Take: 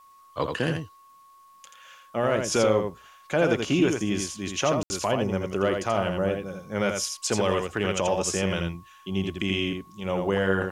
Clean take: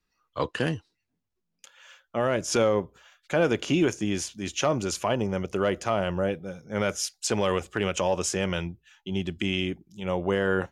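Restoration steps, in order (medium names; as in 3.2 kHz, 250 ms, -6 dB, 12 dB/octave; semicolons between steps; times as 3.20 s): band-stop 1.1 kHz, Q 30; room tone fill 4.83–4.90 s; expander -46 dBFS, range -21 dB; inverse comb 83 ms -5 dB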